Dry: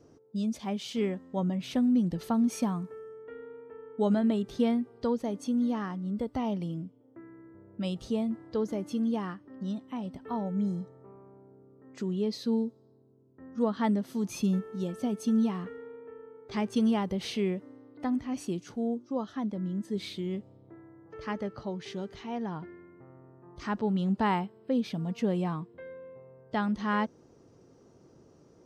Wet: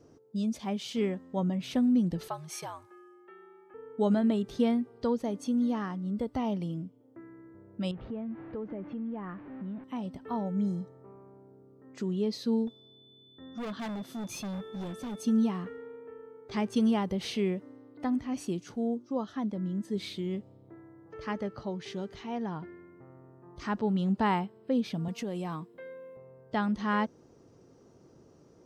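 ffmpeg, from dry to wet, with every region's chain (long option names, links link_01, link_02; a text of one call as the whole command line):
ffmpeg -i in.wav -filter_complex "[0:a]asettb=1/sr,asplit=3[link_01][link_02][link_03];[link_01]atrim=end=2.284[link_04];[link_02]atrim=start=2.28:end=3.74,asetpts=PTS-STARTPTS,afade=type=in:duration=0.004:curve=qsin,afade=type=out:start_time=1.456:duration=0.004:curve=qsin,highpass=790,afreqshift=-82[link_05];[link_03]atrim=start=3.736[link_06];[link_04][link_05]acrossfade=duration=0.004:curve1=hsin:curve2=qsin[link_07];[link_07][link_06]acrossfade=duration=0.004:curve1=qsin:curve2=hsin,asettb=1/sr,asplit=3[link_08][link_09][link_10];[link_08]atrim=end=7.914[link_11];[link_09]atrim=start=7.91:end=9.84,asetpts=PTS-STARTPTS,afade=type=in:duration=0.004:curve=qsin,afade=type=out:start_time=1.926:duration=0.004:curve=qsin,aeval=exprs='val(0)+0.5*0.00596*sgn(val(0))':channel_layout=same,lowpass=frequency=2200:width=0.5412,lowpass=frequency=2200:width=1.3066,acompressor=threshold=-37dB:ratio=2.5:attack=3.2:release=140:knee=1:detection=peak[link_12];[link_10]atrim=start=9.836[link_13];[link_11][link_12]acrossfade=duration=0.004:curve1=hsin:curve2=qsin[link_14];[link_14][link_13]acrossfade=duration=0.004:curve1=qsin:curve2=hsin,asettb=1/sr,asplit=3[link_15][link_16][link_17];[link_15]atrim=end=12.674[link_18];[link_16]atrim=start=12.67:end=15.22,asetpts=PTS-STARTPTS,afade=type=in:duration=0.004:curve=qsin,afade=type=out:start_time=2.546:duration=0.004:curve=qsin,volume=34.5dB,asoftclip=hard,volume=-34.5dB,aeval=exprs='val(0)+0.00141*sin(2*PI*3500*n/s)':channel_layout=same[link_19];[link_17]atrim=start=15.216[link_20];[link_18][link_19]acrossfade=duration=0.004:curve1=hsin:curve2=qsin[link_21];[link_21][link_20]acrossfade=duration=0.004:curve1=qsin:curve2=hsin,asettb=1/sr,asplit=3[link_22][link_23][link_24];[link_22]atrim=end=25.084[link_25];[link_23]atrim=start=25.08:end=26.17,asetpts=PTS-STARTPTS,afade=type=in:duration=0.004:curve=qsin,afade=type=out:start_time=1.086:duration=0.004:curve=qsin,highpass=170,aemphasis=mode=production:type=cd,acompressor=threshold=-31dB:ratio=5:attack=3.2:release=140:knee=1:detection=peak[link_26];[link_24]atrim=start=26.166[link_27];[link_25][link_26]acrossfade=duration=0.004:curve1=hsin:curve2=qsin[link_28];[link_28][link_27]acrossfade=duration=0.004:curve1=qsin:curve2=hsin" out.wav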